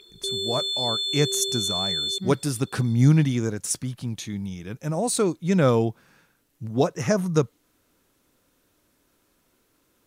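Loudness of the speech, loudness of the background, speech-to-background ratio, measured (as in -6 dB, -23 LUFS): -25.0 LUFS, -25.5 LUFS, 0.5 dB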